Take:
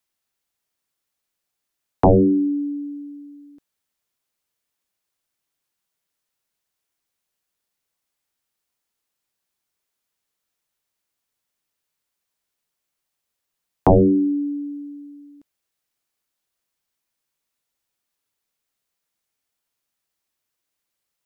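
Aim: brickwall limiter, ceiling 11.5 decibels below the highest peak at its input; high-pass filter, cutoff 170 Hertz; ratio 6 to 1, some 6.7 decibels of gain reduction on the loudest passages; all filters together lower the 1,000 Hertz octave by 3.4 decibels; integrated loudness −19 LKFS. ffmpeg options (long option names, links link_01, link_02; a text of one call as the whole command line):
ffmpeg -i in.wav -af "highpass=170,equalizer=frequency=1000:width_type=o:gain=-5,acompressor=threshold=-19dB:ratio=6,volume=10.5dB,alimiter=limit=-10.5dB:level=0:latency=1" out.wav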